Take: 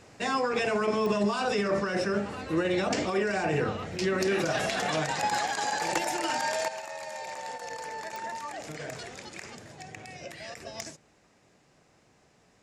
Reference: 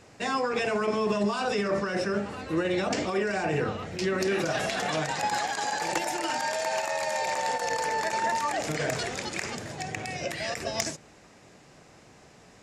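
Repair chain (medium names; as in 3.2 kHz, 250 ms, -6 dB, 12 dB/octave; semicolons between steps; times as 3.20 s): de-click; trim 0 dB, from 6.68 s +9.5 dB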